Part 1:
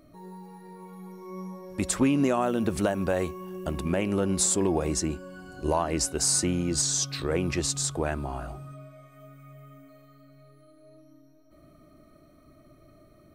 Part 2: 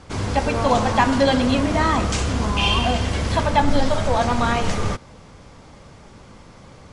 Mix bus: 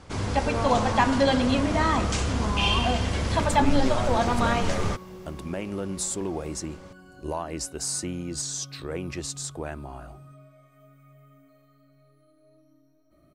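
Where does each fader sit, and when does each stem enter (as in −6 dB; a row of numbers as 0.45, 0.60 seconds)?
−5.5, −4.0 decibels; 1.60, 0.00 seconds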